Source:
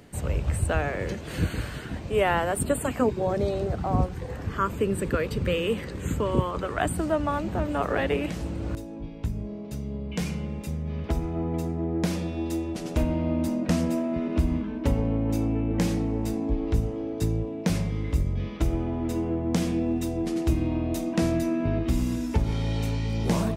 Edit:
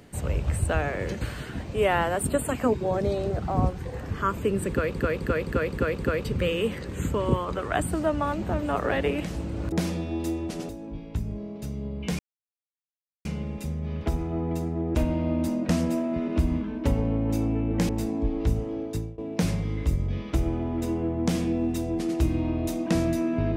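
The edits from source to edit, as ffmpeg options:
-filter_complex "[0:a]asplit=13[s0][s1][s2][s3][s4][s5][s6][s7][s8][s9][s10][s11][s12];[s0]atrim=end=1.212[s13];[s1]atrim=start=1.568:end=5.312[s14];[s2]atrim=start=5.048:end=5.312[s15];[s3]atrim=start=5.048:end=5.312[s16];[s4]atrim=start=5.048:end=5.312[s17];[s5]atrim=start=5.048:end=5.312[s18];[s6]atrim=start=5.048:end=8.782[s19];[s7]atrim=start=11.978:end=12.952[s20];[s8]atrim=start=8.778:end=10.28,asetpts=PTS-STARTPTS,afade=t=out:st=1.498:d=0.004:c=hsin,apad=pad_dur=1.06[s21];[s9]atrim=start=10.28:end=11.982,asetpts=PTS-STARTPTS,afade=t=in:d=0.004:c=hsin[s22];[s10]atrim=start=12.948:end=15.892[s23];[s11]atrim=start=16.158:end=17.45,asetpts=PTS-STARTPTS,afade=t=out:st=0.932:d=0.36:silence=0.0707946[s24];[s12]atrim=start=17.45,asetpts=PTS-STARTPTS,afade=t=in:d=0.004:c=hsin:silence=0.0707946[s25];[s13][s14]acrossfade=d=0.004:c1=hsin:c2=hsin[s26];[s26][s15]acrossfade=d=0.004:c1=hsin:c2=hsin[s27];[s27][s16]acrossfade=d=0.004:c1=hsin:c2=hsin[s28];[s28][s17]acrossfade=d=0.004:c1=hsin:c2=hsin[s29];[s29][s18]acrossfade=d=0.004:c1=hsin:c2=hsin[s30];[s30][s19]acrossfade=d=0.004:c1=hsin:c2=hsin[s31];[s31][s20]acrossfade=d=0.004:c1=hsin:c2=hsin[s32];[s21][s22]concat=n=2:v=0:a=1[s33];[s32][s33]acrossfade=d=0.004:c1=hsin:c2=hsin[s34];[s34][s23]acrossfade=d=0.004:c1=hsin:c2=hsin[s35];[s24][s25]concat=n=2:v=0:a=1[s36];[s35][s36]acrossfade=d=0.004:c1=hsin:c2=hsin"

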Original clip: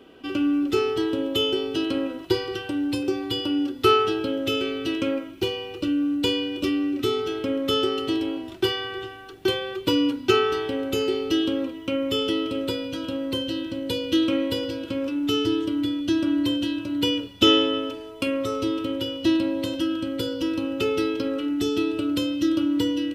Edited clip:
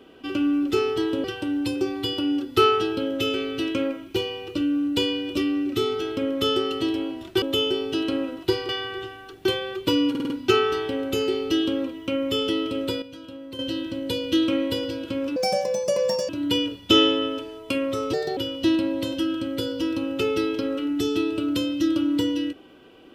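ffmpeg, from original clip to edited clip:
-filter_complex "[0:a]asplit=14[s0][s1][s2][s3][s4][s5][s6][s7][s8][s9][s10][s11][s12][s13];[s0]atrim=end=1.242[s14];[s1]atrim=start=2.508:end=8.692[s15];[s2]atrim=start=1.238:end=2.512[s16];[s3]atrim=start=8.688:end=10.152[s17];[s4]atrim=start=10.098:end=10.152[s18];[s5]atrim=start=10.098:end=10.152[s19];[s6]atrim=start=10.098:end=10.152[s20];[s7]atrim=start=10.098:end=12.822[s21];[s8]atrim=start=12.818:end=13.392,asetpts=PTS-STARTPTS,volume=0.299[s22];[s9]atrim=start=13.388:end=15.164[s23];[s10]atrim=start=15.16:end=16.81,asetpts=PTS-STARTPTS,asetrate=78057,aresample=44100,atrim=end_sample=41110,asetpts=PTS-STARTPTS[s24];[s11]atrim=start=16.806:end=18.654[s25];[s12]atrim=start=18.65:end=18.98,asetpts=PTS-STARTPTS,asetrate=61299,aresample=44100[s26];[s13]atrim=start=18.976[s27];[s14][s15]acrossfade=d=0.004:c1=hsin:c2=hsin[s28];[s28][s16]acrossfade=d=0.004:c1=hsin:c2=hsin[s29];[s29][s17]acrossfade=d=0.004:c1=hsin:c2=hsin[s30];[s30][s18]acrossfade=d=0.004:c1=hsin:c2=hsin[s31];[s31][s19]acrossfade=d=0.004:c1=hsin:c2=hsin[s32];[s32][s20]acrossfade=d=0.004:c1=hsin:c2=hsin[s33];[s33][s21]acrossfade=d=0.004:c1=hsin:c2=hsin[s34];[s34][s22]acrossfade=d=0.004:c1=hsin:c2=hsin[s35];[s35][s23]acrossfade=d=0.004:c1=hsin:c2=hsin[s36];[s36][s24]acrossfade=d=0.004:c1=hsin:c2=hsin[s37];[s37][s25]acrossfade=d=0.004:c1=hsin:c2=hsin[s38];[s38][s26]acrossfade=d=0.004:c1=hsin:c2=hsin[s39];[s39][s27]acrossfade=d=0.004:c1=hsin:c2=hsin"

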